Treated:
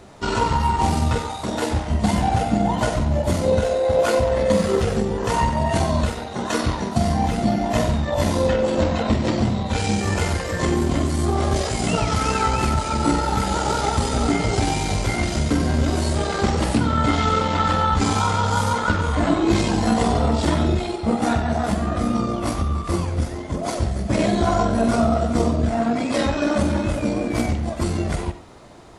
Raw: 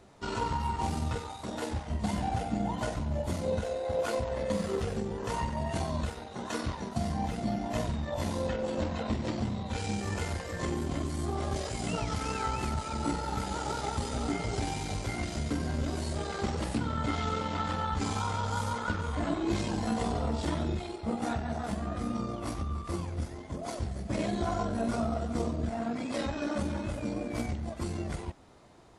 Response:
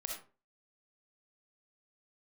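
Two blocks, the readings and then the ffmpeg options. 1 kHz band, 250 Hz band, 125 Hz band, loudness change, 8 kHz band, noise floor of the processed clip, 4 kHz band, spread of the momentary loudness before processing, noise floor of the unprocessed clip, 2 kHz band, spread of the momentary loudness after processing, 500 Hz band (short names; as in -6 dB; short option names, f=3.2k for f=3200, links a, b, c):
+12.5 dB, +12.0 dB, +12.0 dB, +12.0 dB, +12.0 dB, -30 dBFS, +12.0 dB, 4 LU, -42 dBFS, +12.0 dB, 5 LU, +12.5 dB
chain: -filter_complex "[0:a]asplit=2[a][b];[1:a]atrim=start_sample=2205[c];[b][c]afir=irnorm=-1:irlink=0,volume=-3.5dB[d];[a][d]amix=inputs=2:normalize=0,volume=8.5dB"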